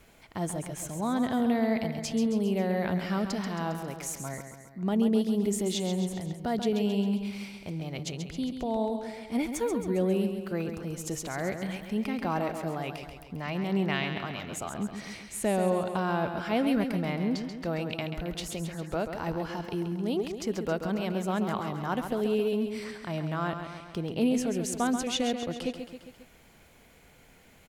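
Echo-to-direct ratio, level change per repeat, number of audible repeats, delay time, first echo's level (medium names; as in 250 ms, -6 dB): -6.5 dB, -4.5 dB, 4, 135 ms, -8.0 dB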